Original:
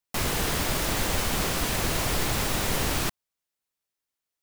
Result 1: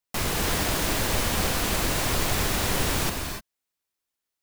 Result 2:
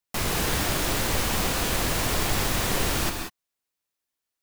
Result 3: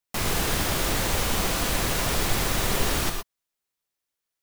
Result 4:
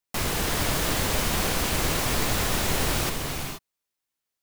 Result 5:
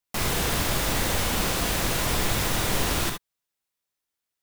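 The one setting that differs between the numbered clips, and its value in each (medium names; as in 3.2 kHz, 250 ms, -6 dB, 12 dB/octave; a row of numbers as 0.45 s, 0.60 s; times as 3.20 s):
gated-style reverb, gate: 320 ms, 210 ms, 140 ms, 500 ms, 90 ms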